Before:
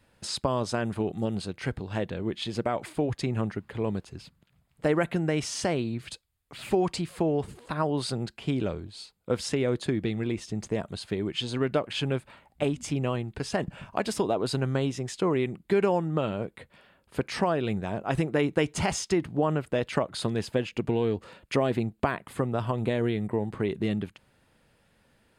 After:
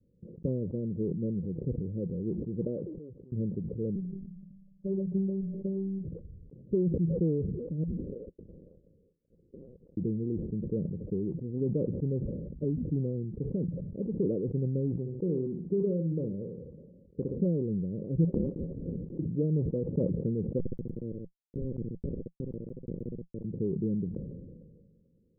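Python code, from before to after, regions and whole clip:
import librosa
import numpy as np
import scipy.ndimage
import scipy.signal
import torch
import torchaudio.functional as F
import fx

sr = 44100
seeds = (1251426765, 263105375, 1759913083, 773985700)

y = fx.chain(x, sr, fx.low_shelf(hz=290.0, db=-11.0),
    fx.auto_swell(attack_ms=649.0), at=(2.64, 3.32))
y = fx.chain(y, sr, fx.robotise(hz=193.0),
    fx.hum_notches(base_hz=60, count=5),
    fx.env_phaser(low_hz=360.0, high_hz=2200.0, full_db=-29.0), at=(3.95, 6.05))
y = fx.chain(y, sr, fx.freq_invert(carrier_hz=3100),
    fx.transient(attack_db=1, sustain_db=-10),
    fx.upward_expand(threshold_db=-42.0, expansion=1.5), at=(7.83, 9.97))
y = fx.chain(y, sr, fx.low_shelf(hz=400.0, db=-4.5),
    fx.echo_feedback(ms=61, feedback_pct=20, wet_db=-8.5), at=(14.96, 17.36))
y = fx.chain(y, sr, fx.tilt_eq(slope=4.0),
    fx.freq_invert(carrier_hz=3000), at=(18.24, 19.19))
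y = fx.chain(y, sr, fx.schmitt(flips_db=-21.0),
    fx.echo_feedback(ms=64, feedback_pct=24, wet_db=-20.0), at=(20.58, 23.44))
y = scipy.signal.sosfilt(scipy.signal.butter(16, 530.0, 'lowpass', fs=sr, output='sos'), y)
y = fx.peak_eq(y, sr, hz=170.0, db=9.0, octaves=0.41)
y = fx.sustainer(y, sr, db_per_s=34.0)
y = F.gain(torch.from_numpy(y), -4.5).numpy()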